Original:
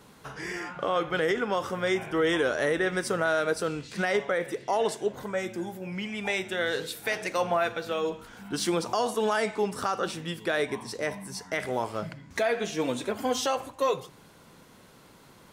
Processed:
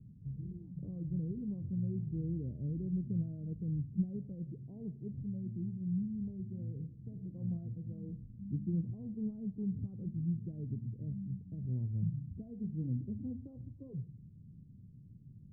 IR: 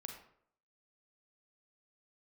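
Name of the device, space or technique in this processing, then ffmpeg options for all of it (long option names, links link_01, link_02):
the neighbour's flat through the wall: -af "lowpass=frequency=190:width=0.5412,lowpass=frequency=190:width=1.3066,equalizer=frequency=110:width_type=o:width=0.85:gain=8,volume=2.5dB"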